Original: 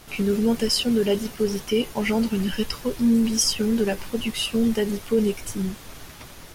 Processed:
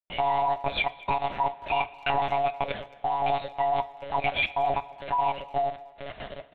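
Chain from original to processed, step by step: band-swap scrambler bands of 500 Hz; in parallel at +0.5 dB: compressor 12:1, threshold -28 dBFS, peak gain reduction 13 dB; on the sum: vibrato 1 Hz 34 cents; step gate ".xxxx.xx." 138 bpm -60 dB; level quantiser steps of 12 dB; monotone LPC vocoder at 8 kHz 140 Hz; speakerphone echo 0.22 s, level -20 dB; two-slope reverb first 0.33 s, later 2.2 s, from -18 dB, DRR 10.5 dB

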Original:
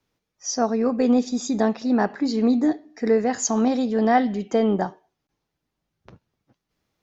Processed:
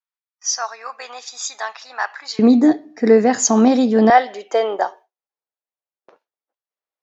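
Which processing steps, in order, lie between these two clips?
HPF 1000 Hz 24 dB/oct, from 2.39 s 120 Hz, from 4.1 s 490 Hz; gate with hold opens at -47 dBFS; mismatched tape noise reduction decoder only; gain +7.5 dB

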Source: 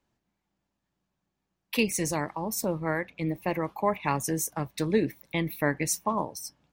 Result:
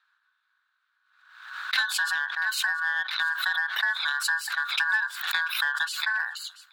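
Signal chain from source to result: elliptic band-stop 480–2400 Hz, stop band 40 dB; high shelf 7200 Hz -11.5 dB; compressor 8:1, threshold -33 dBFS, peak gain reduction 14 dB; on a send: thin delay 0.688 s, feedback 49%, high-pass 2400 Hz, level -16 dB; on the sum: ring modulator 1300 Hz; band shelf 2500 Hz +15.5 dB; in parallel at -7.5 dB: overloaded stage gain 26.5 dB; on the sum: backwards sustainer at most 67 dB/s

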